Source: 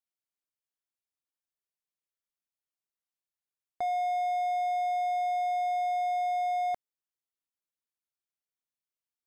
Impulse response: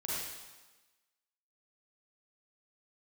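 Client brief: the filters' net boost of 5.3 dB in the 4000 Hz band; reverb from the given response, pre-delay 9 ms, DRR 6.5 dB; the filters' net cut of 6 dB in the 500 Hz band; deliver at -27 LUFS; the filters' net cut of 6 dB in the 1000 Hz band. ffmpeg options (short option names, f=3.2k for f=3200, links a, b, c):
-filter_complex "[0:a]equalizer=f=500:t=o:g=-4,equalizer=f=1k:t=o:g=-8,equalizer=f=4k:t=o:g=6.5,asplit=2[a][b];[1:a]atrim=start_sample=2205,adelay=9[c];[b][c]afir=irnorm=-1:irlink=0,volume=-10dB[d];[a][d]amix=inputs=2:normalize=0,volume=6.5dB"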